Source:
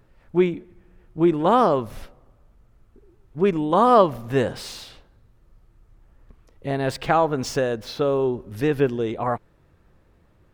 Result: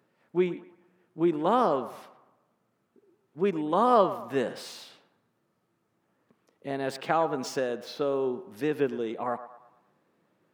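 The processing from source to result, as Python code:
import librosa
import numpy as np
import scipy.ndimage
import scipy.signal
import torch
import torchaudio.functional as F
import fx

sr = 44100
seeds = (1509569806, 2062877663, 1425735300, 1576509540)

y = scipy.signal.sosfilt(scipy.signal.butter(4, 170.0, 'highpass', fs=sr, output='sos'), x)
y = fx.echo_banded(y, sr, ms=113, feedback_pct=47, hz=1000.0, wet_db=-12.0)
y = y * librosa.db_to_amplitude(-6.5)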